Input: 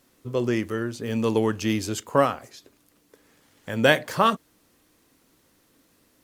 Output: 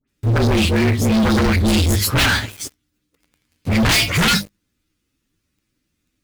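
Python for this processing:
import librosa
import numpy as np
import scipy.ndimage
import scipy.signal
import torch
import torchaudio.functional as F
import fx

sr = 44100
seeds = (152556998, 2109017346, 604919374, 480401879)

y = fx.partial_stretch(x, sr, pct=114)
y = fx.high_shelf(y, sr, hz=7400.0, db=-10.0)
y = fx.dispersion(y, sr, late='highs', ms=81.0, hz=2000.0)
y = fx.fold_sine(y, sr, drive_db=17, ceiling_db=-5.0)
y = fx.tone_stack(y, sr, knobs='6-0-2')
y = fx.hum_notches(y, sr, base_hz=50, count=4)
y = fx.leveller(y, sr, passes=5)
y = y * 10.0 ** (3.5 / 20.0)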